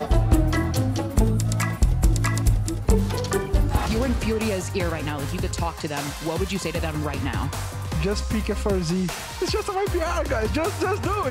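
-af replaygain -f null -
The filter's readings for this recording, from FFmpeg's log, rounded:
track_gain = +7.5 dB
track_peak = 0.282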